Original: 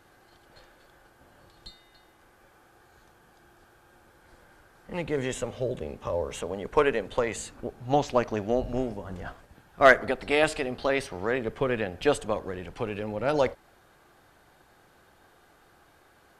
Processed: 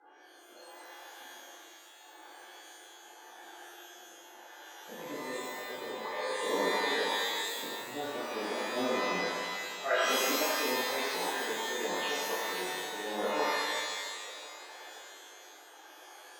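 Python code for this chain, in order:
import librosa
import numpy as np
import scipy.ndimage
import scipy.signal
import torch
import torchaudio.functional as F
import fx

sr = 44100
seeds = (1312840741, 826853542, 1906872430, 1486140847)

p1 = scipy.signal.sosfilt(scipy.signal.butter(2, 310.0, 'highpass', fs=sr, output='sos'), x)
p2 = fx.peak_eq(p1, sr, hz=850.0, db=9.0, octaves=0.25)
p3 = fx.auto_swell(p2, sr, attack_ms=526.0)
p4 = fx.spec_topn(p3, sr, count=32)
p5 = fx.rotary(p4, sr, hz=0.8)
p6 = p5 + fx.echo_split(p5, sr, split_hz=400.0, low_ms=162, high_ms=518, feedback_pct=52, wet_db=-13.0, dry=0)
p7 = fx.rev_shimmer(p6, sr, seeds[0], rt60_s=1.3, semitones=12, shimmer_db=-2, drr_db=-10.5)
y = p7 * librosa.db_to_amplitude(-4.0)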